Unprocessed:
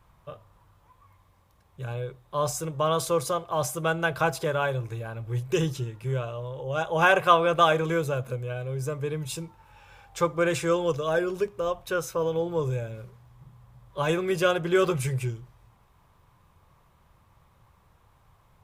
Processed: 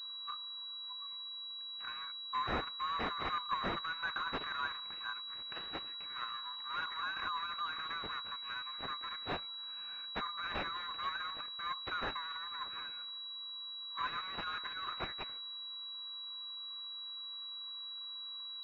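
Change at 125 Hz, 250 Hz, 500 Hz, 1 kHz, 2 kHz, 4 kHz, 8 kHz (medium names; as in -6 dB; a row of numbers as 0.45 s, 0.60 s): -25.5 dB, -19.5 dB, -25.0 dB, -10.5 dB, -10.0 dB, +1.5 dB, under -30 dB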